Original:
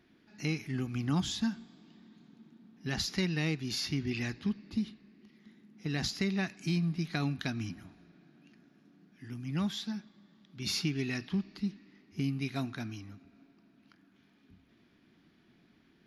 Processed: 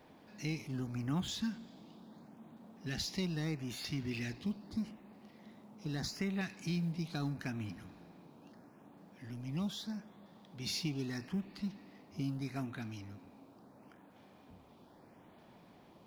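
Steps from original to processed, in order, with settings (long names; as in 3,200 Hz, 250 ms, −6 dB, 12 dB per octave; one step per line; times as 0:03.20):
mu-law and A-law mismatch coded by mu
auto-filter notch saw up 0.78 Hz 450–6,000 Hz
noise in a band 95–960 Hz −57 dBFS
level −6 dB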